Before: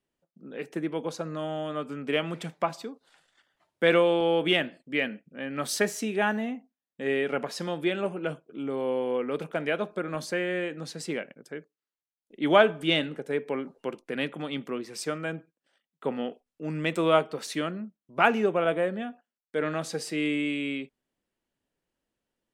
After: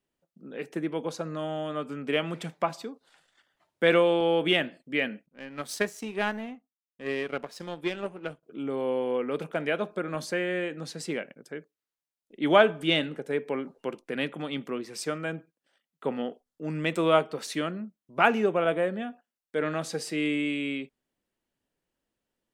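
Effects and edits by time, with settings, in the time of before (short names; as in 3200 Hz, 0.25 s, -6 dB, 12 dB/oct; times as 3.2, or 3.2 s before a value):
5.26–8.43 power-law curve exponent 1.4
16.22–16.67 bell 2500 Hz -12.5 dB 0.28 oct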